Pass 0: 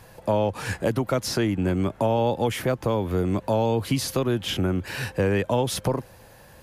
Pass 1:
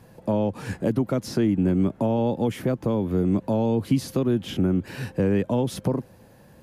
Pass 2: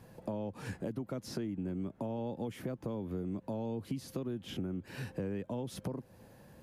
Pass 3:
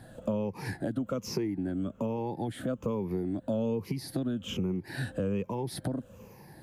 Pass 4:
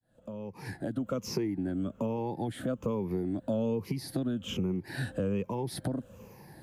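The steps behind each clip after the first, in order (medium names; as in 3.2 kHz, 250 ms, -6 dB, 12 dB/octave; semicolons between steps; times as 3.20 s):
peaking EQ 220 Hz +13 dB 2.2 oct; trim -8 dB
compression 3:1, threshold -33 dBFS, peak gain reduction 12.5 dB; trim -5 dB
drifting ripple filter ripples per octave 0.8, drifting -1.2 Hz, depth 13 dB; trim +4 dB
fade-in on the opening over 1.11 s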